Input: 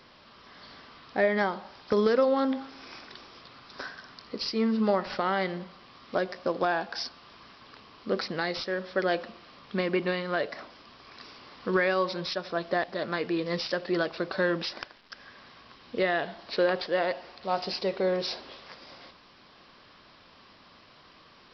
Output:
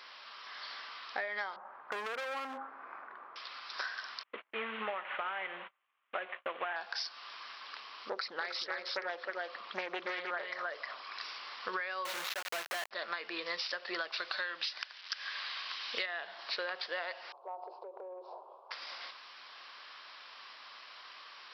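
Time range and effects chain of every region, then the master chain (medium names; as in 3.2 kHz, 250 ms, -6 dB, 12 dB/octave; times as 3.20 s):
1.56–3.36 s: low-pass 1.4 kHz 24 dB/octave + overload inside the chain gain 29 dB + bass shelf 120 Hz +12 dB
4.23–6.76 s: CVSD coder 16 kbps + gate -46 dBFS, range -32 dB
8.09–11.18 s: resonances exaggerated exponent 1.5 + delay 312 ms -5 dB + loudspeaker Doppler distortion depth 0.38 ms
12.05–12.91 s: median filter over 9 samples + companded quantiser 2-bit
14.12–16.06 s: peaking EQ 4.2 kHz +10.5 dB 2.8 oct + careless resampling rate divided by 4×, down none, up filtered
17.32–18.71 s: elliptic band-pass 350–970 Hz + compression 12:1, threshold -36 dBFS
whole clip: high-pass 1.1 kHz 12 dB/octave; treble shelf 4.9 kHz -4.5 dB; compression 12:1, threshold -41 dBFS; trim +7 dB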